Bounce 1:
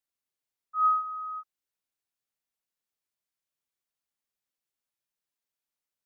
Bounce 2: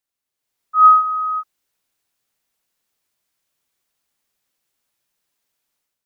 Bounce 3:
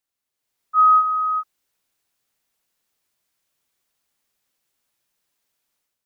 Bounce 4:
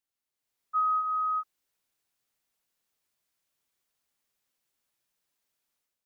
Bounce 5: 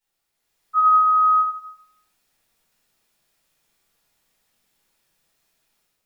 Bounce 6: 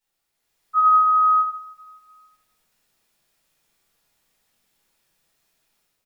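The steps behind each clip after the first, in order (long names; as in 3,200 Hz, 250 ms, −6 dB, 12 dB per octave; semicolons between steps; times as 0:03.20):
automatic gain control gain up to 10 dB; level +4.5 dB
brickwall limiter −9.5 dBFS, peak gain reduction 6.5 dB
downward compressor, threshold −19 dBFS, peak gain reduction 7.5 dB; level −6 dB
rectangular room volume 190 cubic metres, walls mixed, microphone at 4.5 metres
repeating echo 282 ms, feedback 44%, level −21.5 dB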